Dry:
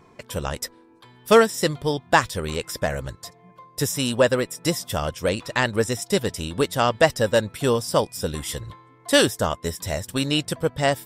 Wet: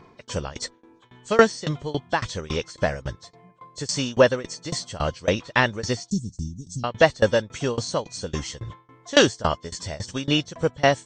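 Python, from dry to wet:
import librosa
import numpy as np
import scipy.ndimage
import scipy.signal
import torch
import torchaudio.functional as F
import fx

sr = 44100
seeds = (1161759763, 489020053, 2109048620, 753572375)

y = fx.freq_compress(x, sr, knee_hz=2900.0, ratio=1.5)
y = fx.cheby2_bandstop(y, sr, low_hz=720.0, high_hz=2100.0, order=4, stop_db=70, at=(6.1, 6.84))
y = fx.tremolo_shape(y, sr, shape='saw_down', hz=3.6, depth_pct=95)
y = y * 10.0 ** (4.0 / 20.0)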